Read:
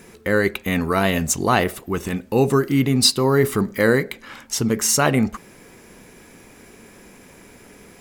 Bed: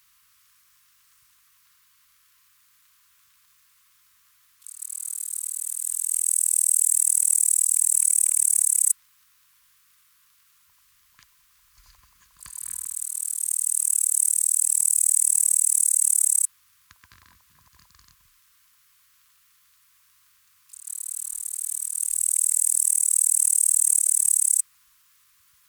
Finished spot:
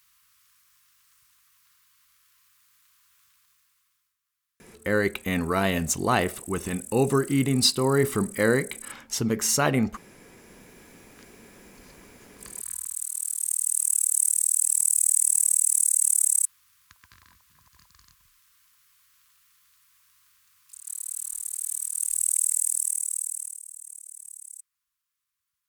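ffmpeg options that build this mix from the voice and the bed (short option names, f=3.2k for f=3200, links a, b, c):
-filter_complex "[0:a]adelay=4600,volume=-5dB[a];[1:a]volume=18dB,afade=t=out:st=3.26:d=0.91:silence=0.105925,afade=t=in:st=10.2:d=0.58:silence=0.1,afade=t=out:st=22.32:d=1.3:silence=0.0841395[b];[a][b]amix=inputs=2:normalize=0"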